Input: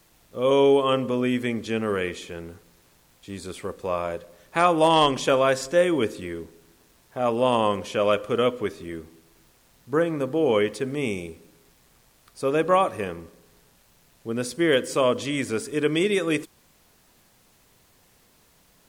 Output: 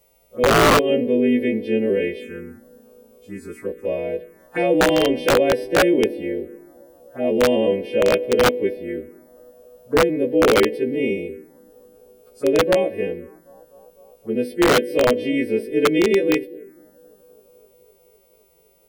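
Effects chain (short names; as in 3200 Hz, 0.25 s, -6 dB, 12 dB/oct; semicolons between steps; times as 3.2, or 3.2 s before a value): frequency quantiser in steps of 2 st; ten-band EQ 125 Hz -7 dB, 250 Hz +7 dB, 500 Hz +9 dB, 1000 Hz -11 dB, 2000 Hz +7 dB, 4000 Hz -10 dB, 8000 Hz -9 dB; band-limited delay 0.255 s, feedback 75%, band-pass 440 Hz, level -21.5 dB; envelope phaser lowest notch 280 Hz, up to 1300 Hz, full sweep at -21.5 dBFS; wrapped overs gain 9 dB; high shelf 3500 Hz -8 dB; gain +1.5 dB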